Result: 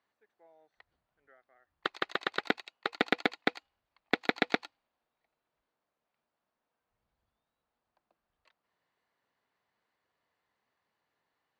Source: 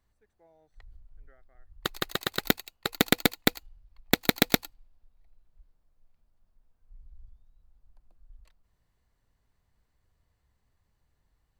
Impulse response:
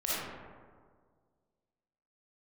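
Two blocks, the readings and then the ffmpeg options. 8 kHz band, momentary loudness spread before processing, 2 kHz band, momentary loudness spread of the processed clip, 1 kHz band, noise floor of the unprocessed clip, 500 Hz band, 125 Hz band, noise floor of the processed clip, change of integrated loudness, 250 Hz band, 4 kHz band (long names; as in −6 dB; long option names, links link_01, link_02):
−22.0 dB, 10 LU, −1.5 dB, 7 LU, −1.0 dB, −75 dBFS, −3.5 dB, −14.5 dB, below −85 dBFS, −5.5 dB, −7.5 dB, −8.0 dB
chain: -filter_complex "[0:a]asplit=2[link_01][link_02];[link_02]highpass=frequency=720:poles=1,volume=11dB,asoftclip=type=tanh:threshold=-2dB[link_03];[link_01][link_03]amix=inputs=2:normalize=0,lowpass=frequency=3400:poles=1,volume=-6dB,highpass=220,lowpass=4700,acrossover=split=3600[link_04][link_05];[link_05]acompressor=threshold=-39dB:ratio=4:attack=1:release=60[link_06];[link_04][link_06]amix=inputs=2:normalize=0,volume=-3.5dB"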